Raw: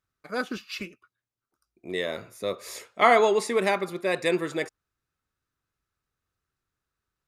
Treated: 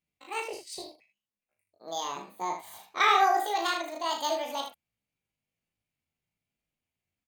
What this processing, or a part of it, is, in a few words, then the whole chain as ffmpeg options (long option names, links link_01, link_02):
chipmunk voice: -filter_complex "[0:a]asettb=1/sr,asplit=3[link_01][link_02][link_03];[link_01]atrim=end=2.094[link_04];[link_02]atrim=start=2.09:end=3.47,asetpts=PTS-STARTPTS,afade=type=in:duration=0.004:curve=qsin,afade=type=out:start_time=1.376:duration=0.004:curve=qsin,tiltshelf=frequency=930:gain=4[link_05];[link_03]atrim=start=3.466[link_06];[link_04][link_05]acrossfade=duration=0.004:curve1=hsin:curve2=qsin[link_07];[link_07][link_06]acrossfade=duration=0.004:curve1=qsin:curve2=hsin,asetrate=78577,aresample=44100,atempo=0.561231,aecho=1:1:36|78:0.531|0.376,volume=-5.5dB"